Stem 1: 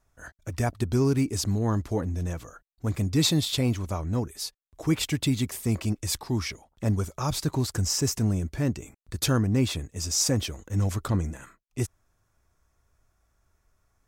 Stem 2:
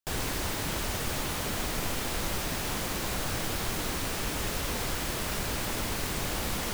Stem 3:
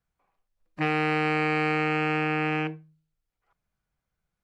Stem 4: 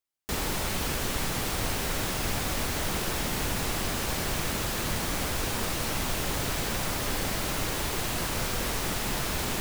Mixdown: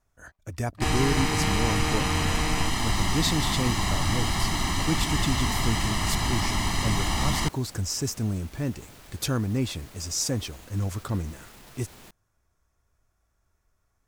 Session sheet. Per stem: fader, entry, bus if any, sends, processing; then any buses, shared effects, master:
-3.0 dB, 0.00 s, no send, none
+3.0 dB, 0.75 s, no send, low-pass 8 kHz 12 dB/octave; comb 1 ms, depth 92%
-6.5 dB, 0.00 s, no send, none
-14.0 dB, 2.50 s, no send, peak limiter -25.5 dBFS, peak gain reduction 9 dB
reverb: none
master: none

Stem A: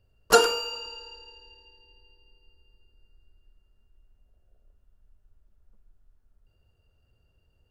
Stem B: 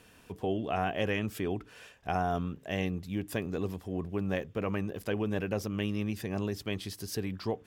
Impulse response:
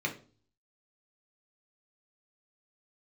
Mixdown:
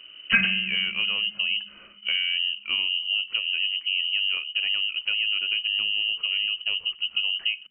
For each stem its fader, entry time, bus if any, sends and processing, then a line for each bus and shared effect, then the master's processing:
-2.5 dB, 0.00 s, no send, none
+2.5 dB, 0.00 s, no send, tilt EQ -4 dB/octave; compression, threshold -25 dBFS, peak gain reduction 7.5 dB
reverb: none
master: frequency inversion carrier 3 kHz

